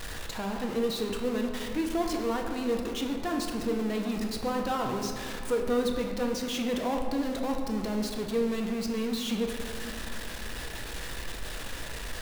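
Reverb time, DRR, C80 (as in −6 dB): 2.4 s, 2.0 dB, 5.5 dB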